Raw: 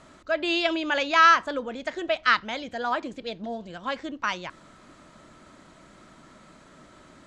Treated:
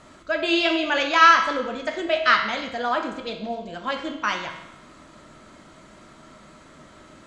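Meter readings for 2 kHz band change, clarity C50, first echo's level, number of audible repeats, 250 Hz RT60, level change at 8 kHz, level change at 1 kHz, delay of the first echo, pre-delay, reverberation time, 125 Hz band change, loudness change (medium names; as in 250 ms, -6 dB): +3.5 dB, 7.0 dB, no echo, no echo, 0.95 s, no reading, +3.0 dB, no echo, 6 ms, 0.95 s, +2.5 dB, +3.5 dB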